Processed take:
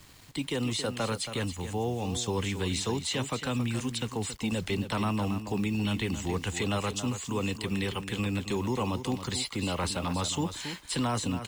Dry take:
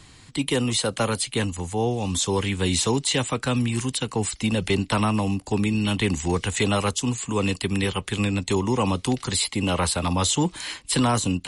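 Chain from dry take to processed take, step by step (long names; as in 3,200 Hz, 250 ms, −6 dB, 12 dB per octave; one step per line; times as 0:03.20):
low-pass filter 7,900 Hz 12 dB per octave
brickwall limiter −15.5 dBFS, peak gain reduction 4 dB
bit reduction 8 bits
single-tap delay 275 ms −10 dB
level −6 dB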